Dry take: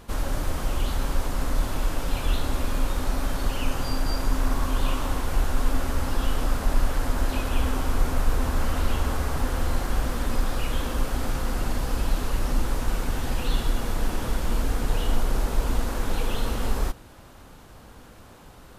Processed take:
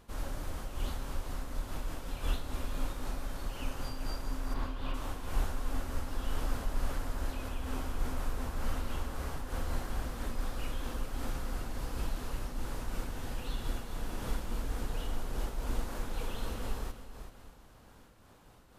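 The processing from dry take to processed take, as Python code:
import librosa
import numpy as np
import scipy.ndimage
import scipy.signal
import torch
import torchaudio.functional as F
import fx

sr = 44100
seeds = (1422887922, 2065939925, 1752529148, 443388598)

p1 = fx.cheby2_lowpass(x, sr, hz=10000.0, order=4, stop_db=50, at=(4.53, 4.93), fade=0.02)
p2 = p1 + fx.echo_feedback(p1, sr, ms=383, feedback_pct=28, wet_db=-10, dry=0)
p3 = fx.am_noise(p2, sr, seeds[0], hz=5.7, depth_pct=65)
y = p3 * 10.0 ** (-7.5 / 20.0)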